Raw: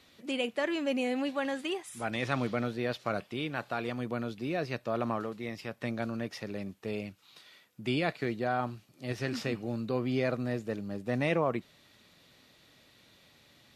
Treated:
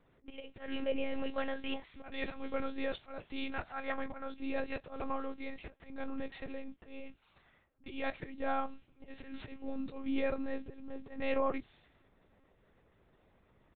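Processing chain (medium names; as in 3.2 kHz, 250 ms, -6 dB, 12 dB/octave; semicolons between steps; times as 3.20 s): level-controlled noise filter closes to 1.1 kHz, open at -31.5 dBFS; time-frequency box 3.68–4.32 s, 590–2300 Hz +9 dB; slow attack 217 ms; doubling 27 ms -13 dB; monotone LPC vocoder at 8 kHz 270 Hz; trim -2.5 dB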